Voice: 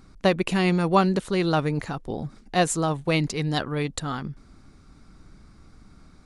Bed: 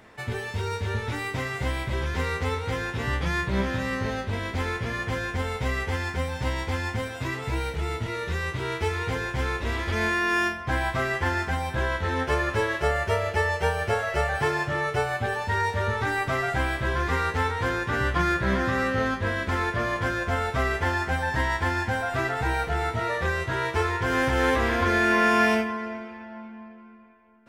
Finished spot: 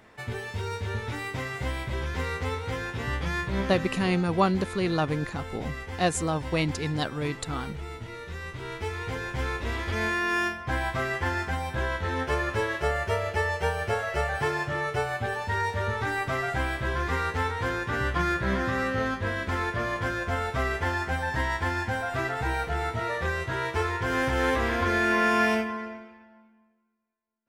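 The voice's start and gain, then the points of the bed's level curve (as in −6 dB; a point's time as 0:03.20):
3.45 s, −3.5 dB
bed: 0:03.61 −3 dB
0:04.13 −9 dB
0:08.32 −9 dB
0:09.45 −2.5 dB
0:25.80 −2.5 dB
0:26.97 −29.5 dB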